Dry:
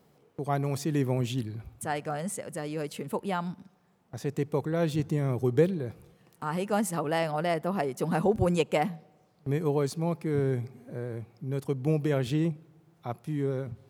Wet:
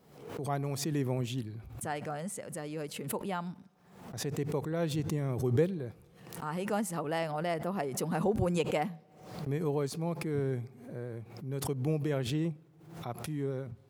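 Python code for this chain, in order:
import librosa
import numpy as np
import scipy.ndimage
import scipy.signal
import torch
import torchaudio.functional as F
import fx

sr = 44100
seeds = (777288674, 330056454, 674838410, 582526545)

y = fx.pre_swell(x, sr, db_per_s=73.0)
y = y * 10.0 ** (-5.0 / 20.0)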